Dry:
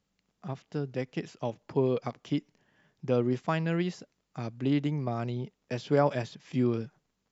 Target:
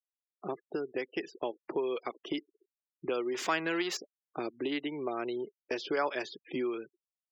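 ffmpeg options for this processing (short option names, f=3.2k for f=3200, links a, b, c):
-filter_complex "[0:a]asettb=1/sr,asplit=3[a][b][c];[a]atrim=end=3.344[d];[b]atrim=start=3.34:end=3.97,asetpts=PTS-STARTPTS,afade=t=in:d=0.004:c=qsin,afade=t=out:st=0.626:d=0.004:c=qsin,aeval=exprs='val(0)+0.5*0.0178*sgn(val(0))':c=same[e];[c]atrim=start=3.966[f];[d][e]acrossfade=d=0.004:c1=hsin:c2=qsin[g];[g][f]acrossfade=d=0.004:c1=qsin:c2=hsin,highpass=f=360:t=q:w=4.1,afftfilt=real='re*gte(hypot(re,im),0.00562)':imag='im*gte(hypot(re,im),0.00562)':win_size=1024:overlap=0.75,acrossover=split=1100[h][i];[h]acompressor=threshold=-38dB:ratio=6[j];[j][i]amix=inputs=2:normalize=0,volume=4dB"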